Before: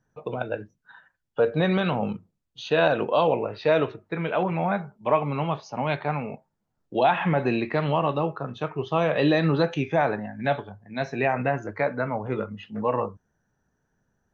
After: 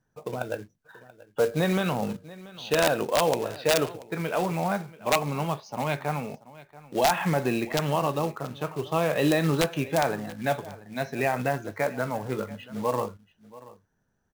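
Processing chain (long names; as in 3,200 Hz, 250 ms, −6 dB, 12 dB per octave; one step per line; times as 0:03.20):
wrap-around overflow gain 11 dB
floating-point word with a short mantissa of 2 bits
single-tap delay 683 ms −19.5 dB
level −2 dB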